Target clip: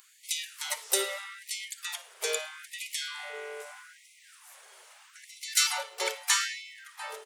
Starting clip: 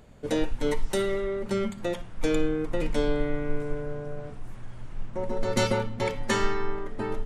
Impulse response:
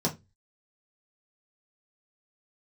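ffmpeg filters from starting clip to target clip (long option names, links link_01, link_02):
-filter_complex "[0:a]crystalizer=i=8.5:c=0,asplit=3[link_01][link_02][link_03];[link_02]asetrate=29433,aresample=44100,atempo=1.49831,volume=-15dB[link_04];[link_03]asetrate=58866,aresample=44100,atempo=0.749154,volume=-11dB[link_05];[link_01][link_04][link_05]amix=inputs=3:normalize=0,afftfilt=real='re*gte(b*sr/1024,350*pow(2000/350,0.5+0.5*sin(2*PI*0.79*pts/sr)))':imag='im*gte(b*sr/1024,350*pow(2000/350,0.5+0.5*sin(2*PI*0.79*pts/sr)))':win_size=1024:overlap=0.75,volume=-7.5dB"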